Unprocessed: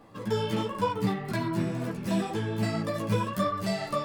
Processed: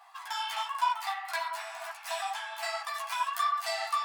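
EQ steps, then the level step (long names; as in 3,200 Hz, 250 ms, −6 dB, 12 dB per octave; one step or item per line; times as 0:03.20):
linear-phase brick-wall high-pass 660 Hz
+3.0 dB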